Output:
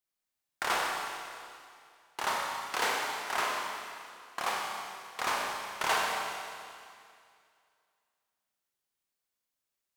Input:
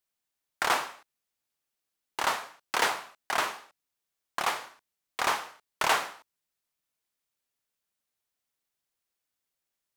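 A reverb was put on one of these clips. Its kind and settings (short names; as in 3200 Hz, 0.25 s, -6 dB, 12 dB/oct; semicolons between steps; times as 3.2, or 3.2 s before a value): Schroeder reverb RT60 2.3 s, combs from 30 ms, DRR -1.5 dB; gain -5.5 dB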